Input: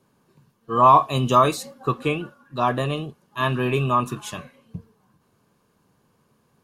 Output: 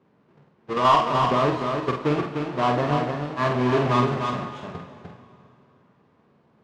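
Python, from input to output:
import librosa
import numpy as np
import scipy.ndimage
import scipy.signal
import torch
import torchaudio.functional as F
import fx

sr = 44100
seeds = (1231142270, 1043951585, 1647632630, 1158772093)

y = fx.halfwave_hold(x, sr)
y = fx.highpass(y, sr, hz=230.0, slope=6)
y = fx.level_steps(y, sr, step_db=9, at=(0.73, 2.04))
y = 10.0 ** (-9.5 / 20.0) * np.tanh(y / 10.0 ** (-9.5 / 20.0))
y = fx.spacing_loss(y, sr, db_at_10k=32)
y = fx.doubler(y, sr, ms=48.0, db=-5.5)
y = y + 10.0 ** (-5.0 / 20.0) * np.pad(y, (int(300 * sr / 1000.0), 0))[:len(y)]
y = fx.rev_plate(y, sr, seeds[0], rt60_s=2.7, hf_ratio=0.9, predelay_ms=0, drr_db=9.0)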